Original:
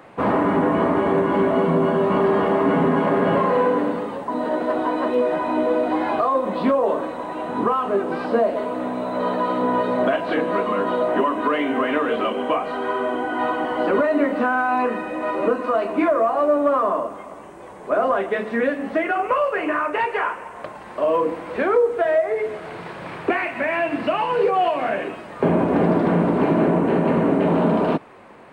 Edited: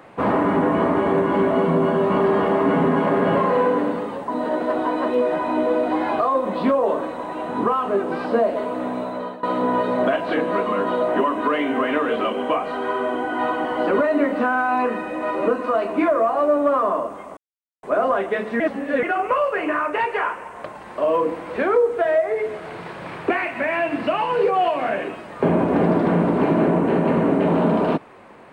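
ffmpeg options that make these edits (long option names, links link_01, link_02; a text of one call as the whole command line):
ffmpeg -i in.wav -filter_complex "[0:a]asplit=6[link_01][link_02][link_03][link_04][link_05][link_06];[link_01]atrim=end=9.43,asetpts=PTS-STARTPTS,afade=type=out:start_time=8.98:duration=0.45:silence=0.1[link_07];[link_02]atrim=start=9.43:end=17.37,asetpts=PTS-STARTPTS,afade=type=in:duration=0.004:curve=hsin:silence=0.1,afade=type=out:start_time=7.936:duration=0.004:curve=hsin[link_08];[link_03]atrim=start=17.37:end=17.83,asetpts=PTS-STARTPTS,volume=0[link_09];[link_04]atrim=start=17.83:end=18.602,asetpts=PTS-STARTPTS,afade=type=in:duration=0.004:curve=hsin[link_10];[link_05]atrim=start=18.598:end=19.032,asetpts=PTS-STARTPTS,areverse[link_11];[link_06]atrim=start=19.028[link_12];[link_07][link_08][link_09][link_10]concat=n=4:v=0:a=1[link_13];[link_13][link_11]acrossfade=duration=0.004:curve1=hsin:curve2=hsin[link_14];[link_14][link_12]acrossfade=duration=0.004:curve1=hsin:curve2=hsin" out.wav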